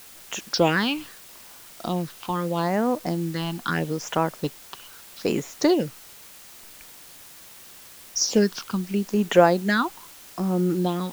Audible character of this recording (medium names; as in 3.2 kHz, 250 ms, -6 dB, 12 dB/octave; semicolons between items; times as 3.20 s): phasing stages 6, 0.78 Hz, lowest notch 500–4600 Hz; a quantiser's noise floor 8-bit, dither triangular